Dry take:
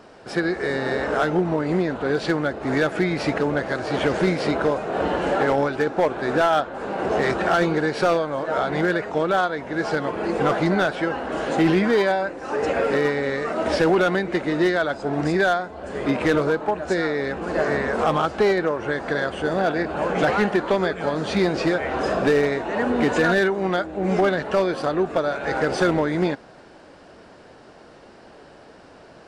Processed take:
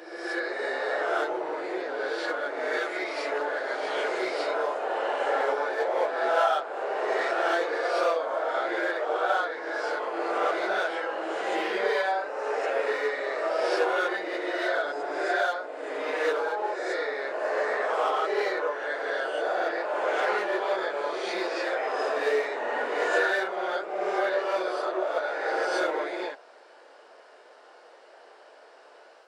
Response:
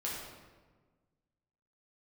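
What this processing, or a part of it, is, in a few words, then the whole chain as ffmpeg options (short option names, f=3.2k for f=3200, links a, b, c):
ghost voice: -filter_complex "[0:a]areverse[a];[1:a]atrim=start_sample=2205[b];[a][b]afir=irnorm=-1:irlink=0,areverse,highpass=f=470:w=0.5412,highpass=f=470:w=1.3066,volume=-6.5dB"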